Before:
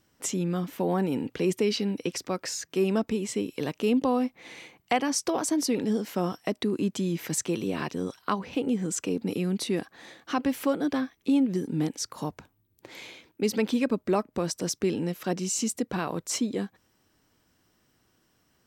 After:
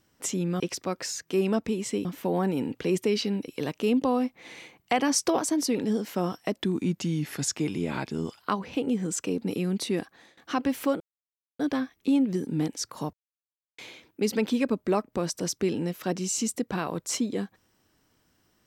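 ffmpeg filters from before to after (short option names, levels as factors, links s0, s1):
-filter_complex "[0:a]asplit=12[s0][s1][s2][s3][s4][s5][s6][s7][s8][s9][s10][s11];[s0]atrim=end=0.602[s12];[s1]atrim=start=2.028:end=3.482[s13];[s2]atrim=start=0.598:end=2.032[s14];[s3]atrim=start=3.478:end=4.982[s15];[s4]atrim=start=4.978:end=5.392,asetpts=PTS-STARTPTS,volume=1.41[s16];[s5]atrim=start=5.388:end=6.564[s17];[s6]atrim=start=6.56:end=8.2,asetpts=PTS-STARTPTS,asetrate=39249,aresample=44100[s18];[s7]atrim=start=8.196:end=10.17,asetpts=PTS-STARTPTS,afade=t=out:st=1.614:d=0.36:silence=0.105925[s19];[s8]atrim=start=10.17:end=10.8,asetpts=PTS-STARTPTS,afade=t=in:d=0.004:c=hsin:silence=0.105925,afade=t=out:st=0.626:d=0.004:c=hsin,apad=pad_dur=0.59[s20];[s9]atrim=start=10.8:end=12.34,asetpts=PTS-STARTPTS,afade=t=in:d=0.004:c=hsin,afade=t=out:st=1.536:d=0.004:c=hsin[s21];[s10]atrim=start=12.34:end=12.99,asetpts=PTS-STARTPTS,volume=0[s22];[s11]atrim=start=12.99,asetpts=PTS-STARTPTS,afade=t=in:d=0.004:c=hsin[s23];[s12][s13]acrossfade=d=0.004:c1=hsin:c2=hsin[s24];[s24][s14]acrossfade=d=0.004:c1=hsin:c2=hsin[s25];[s25][s15]acrossfade=d=0.004:c1=hsin:c2=hsin[s26];[s26][s16]acrossfade=d=0.004:c1=hsin:c2=hsin[s27];[s27][s17]acrossfade=d=0.004:c1=hsin:c2=hsin[s28];[s28][s18]acrossfade=d=0.004:c1=hsin:c2=hsin[s29];[s19][s20][s21][s22][s23]concat=n=5:v=0:a=1[s30];[s29][s30]acrossfade=d=0.004:c1=hsin:c2=hsin"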